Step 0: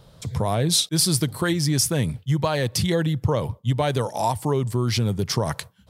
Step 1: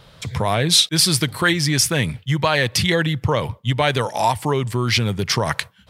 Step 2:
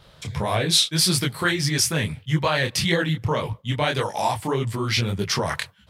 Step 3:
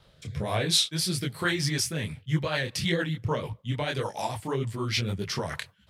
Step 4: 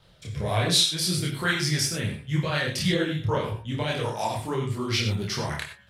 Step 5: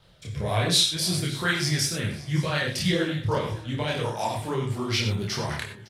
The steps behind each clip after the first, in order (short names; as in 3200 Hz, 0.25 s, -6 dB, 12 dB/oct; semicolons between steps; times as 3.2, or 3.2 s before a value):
bell 2200 Hz +11.5 dB 2 oct; gain +1 dB
detuned doubles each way 59 cents
rotary speaker horn 1.1 Hz, later 6.7 Hz, at 1.74; gain -4 dB
de-hum 70.76 Hz, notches 39; chorus voices 2, 0.71 Hz, delay 28 ms, depth 1 ms; non-linear reverb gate 0.11 s rising, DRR 7 dB; gain +5 dB
feedback echo 0.561 s, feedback 55%, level -19 dB